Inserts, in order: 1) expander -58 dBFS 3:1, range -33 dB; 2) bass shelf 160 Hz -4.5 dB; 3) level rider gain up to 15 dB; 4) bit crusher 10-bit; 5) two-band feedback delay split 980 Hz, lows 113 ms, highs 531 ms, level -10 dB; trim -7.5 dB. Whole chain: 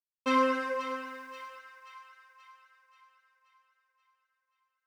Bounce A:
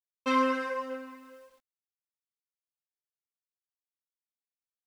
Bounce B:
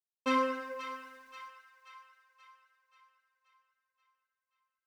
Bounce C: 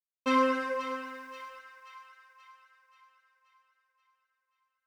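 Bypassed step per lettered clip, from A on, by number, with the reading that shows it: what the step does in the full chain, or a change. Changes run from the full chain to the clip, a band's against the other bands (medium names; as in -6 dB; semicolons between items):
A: 5, echo-to-direct -8.5 dB to none; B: 3, crest factor change +1.5 dB; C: 2, momentary loudness spread change -2 LU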